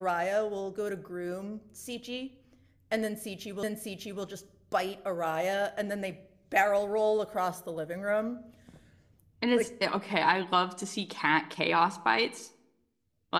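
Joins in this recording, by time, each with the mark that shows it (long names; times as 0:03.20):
0:03.63: the same again, the last 0.6 s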